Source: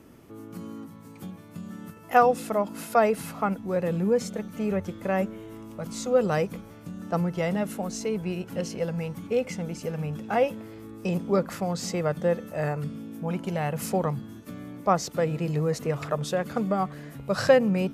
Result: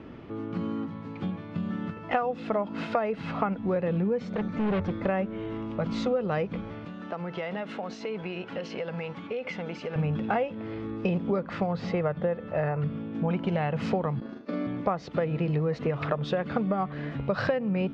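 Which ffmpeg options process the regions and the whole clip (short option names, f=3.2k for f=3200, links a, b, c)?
-filter_complex "[0:a]asettb=1/sr,asplit=3[a][b][c];[a]atrim=end=4.254[d];[b]atrim=start=4.25:end=5.06,asetpts=PTS-STARTPTS,afade=t=in:d=0.004:c=qsin,afade=t=out:st=0.806:d=0.004:c=qsin,equalizer=f=3k:w=5.7:g=-11.5,asoftclip=type=hard:threshold=-31dB[e];[c]atrim=start=5.056[f];[d][e]acrossfade=d=0.004:c1=hsin:c2=qsin[g];[g][f]acrossfade=d=0.004:c1=qsin:c2=hsin,asettb=1/sr,asplit=3[h][i][j];[h]atrim=end=6.854[k];[i]atrim=start=6.85:end=9.96,asetpts=PTS-STARTPTS,afade=t=in:d=0.004:c=qsin,afade=t=out:st=3.106:d=0.004:c=qsin,highpass=f=640:p=1,acompressor=threshold=-36dB:ratio=10:attack=3.2:release=140:knee=1:detection=peak[l];[j]atrim=start=9.956[m];[k][l]acrossfade=d=0.004:c1=hsin:c2=qsin[n];[n][m]acrossfade=d=0.004:c1=qsin:c2=hsin,asettb=1/sr,asplit=3[o][p][q];[o]atrim=end=11.664[r];[p]atrim=start=11.66:end=13.15,asetpts=PTS-STARTPTS,afade=t=in:d=0.004:c=qsin,afade=t=out:st=1.486:d=0.004:c=qsin,lowpass=f=2.2k:p=1,equalizer=f=260:w=1.7:g=-6.5[s];[q]atrim=start=13.146[t];[r][s]acrossfade=d=0.004:c1=hsin:c2=qsin[u];[u][t]acrossfade=d=0.004:c1=qsin:c2=hsin,asettb=1/sr,asplit=3[v][w][x];[v]atrim=end=14.204[y];[w]atrim=start=14.2:end=14.67,asetpts=PTS-STARTPTS,afade=t=in:d=0.004:c=qsin,afade=t=out:st=0.466:d=0.004:c=qsin,highpass=f=210:w=0.5412,highpass=f=210:w=1.3066,equalizer=f=520:t=q:w=4:g=9,equalizer=f=3.2k:t=q:w=4:g=-7,equalizer=f=4.7k:t=q:w=4:g=8,lowpass=f=7.3k:w=0.5412,lowpass=f=7.3k:w=1.3066,agate=range=-11dB:threshold=-44dB:ratio=16:release=100:detection=peak,asplit=2[z][aa];[aa]adelay=44,volume=-4dB[ab];[z][ab]amix=inputs=2:normalize=0,atrim=end_sample=20727[ac];[x]atrim=start=14.666[ad];[y][ac]acrossfade=d=0.004:c1=hsin:c2=qsin[ae];[ae][ad]acrossfade=d=0.004:c1=qsin:c2=hsin,lowpass=f=3.6k:w=0.5412,lowpass=f=3.6k:w=1.3066,acompressor=threshold=-31dB:ratio=16,volume=7.5dB"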